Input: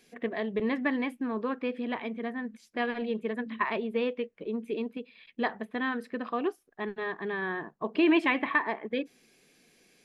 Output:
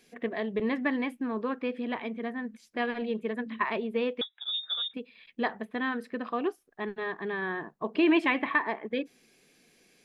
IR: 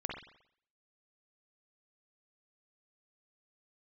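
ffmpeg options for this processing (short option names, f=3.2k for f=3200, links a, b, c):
-filter_complex "[0:a]asettb=1/sr,asplit=3[a][b][c];[a]atrim=end=4.214[d];[b]atrim=start=4.21:end=4.94,asetpts=PTS-STARTPTS,afade=t=in:d=0.004:c=qsin,afade=t=out:st=0.726:d=0.004:c=qsin,lowpass=f=3.3k:t=q:w=0.5098,lowpass=f=3.3k:t=q:w=0.6013,lowpass=f=3.3k:t=q:w=0.9,lowpass=f=3.3k:t=q:w=2.563,afreqshift=-3900[e];[c]atrim=start=4.936[f];[d][e]acrossfade=d=0.004:c1=hsin:c2=qsin[g];[g][f]acrossfade=d=0.004:c1=qsin:c2=hsin"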